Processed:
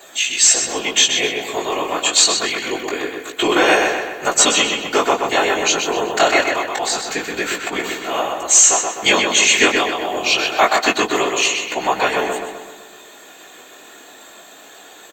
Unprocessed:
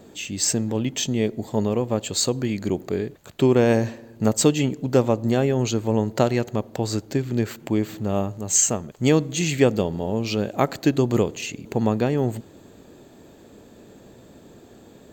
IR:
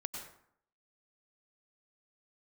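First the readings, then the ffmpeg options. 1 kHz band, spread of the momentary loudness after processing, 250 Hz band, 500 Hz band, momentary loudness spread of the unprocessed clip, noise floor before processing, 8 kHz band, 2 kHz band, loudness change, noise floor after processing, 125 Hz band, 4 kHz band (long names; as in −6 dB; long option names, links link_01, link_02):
+12.5 dB, 11 LU, −3.5 dB, +2.5 dB, 8 LU, −49 dBFS, +11.0 dB, +16.5 dB, +7.0 dB, −42 dBFS, −16.5 dB, +15.0 dB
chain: -filter_complex "[0:a]highpass=1100,acrossover=split=8500[link_01][link_02];[link_02]acompressor=threshold=-58dB:ratio=4:attack=1:release=60[link_03];[link_01][link_03]amix=inputs=2:normalize=0,equalizer=frequency=4900:width=7:gain=-11.5,aecho=1:1:2.8:0.93,afftfilt=real='hypot(re,im)*cos(2*PI*random(0))':imag='hypot(re,im)*sin(2*PI*random(1))':win_size=512:overlap=0.75,flanger=delay=15.5:depth=7.8:speed=0.25,apsyclip=27.5dB,asplit=2[link_04][link_05];[link_05]adelay=127,lowpass=frequency=4400:poles=1,volume=-4dB,asplit=2[link_06][link_07];[link_07]adelay=127,lowpass=frequency=4400:poles=1,volume=0.53,asplit=2[link_08][link_09];[link_09]adelay=127,lowpass=frequency=4400:poles=1,volume=0.53,asplit=2[link_10][link_11];[link_11]adelay=127,lowpass=frequency=4400:poles=1,volume=0.53,asplit=2[link_12][link_13];[link_13]adelay=127,lowpass=frequency=4400:poles=1,volume=0.53,asplit=2[link_14][link_15];[link_15]adelay=127,lowpass=frequency=4400:poles=1,volume=0.53,asplit=2[link_16][link_17];[link_17]adelay=127,lowpass=frequency=4400:poles=1,volume=0.53[link_18];[link_06][link_08][link_10][link_12][link_14][link_16][link_18]amix=inputs=7:normalize=0[link_19];[link_04][link_19]amix=inputs=2:normalize=0,volume=-5dB"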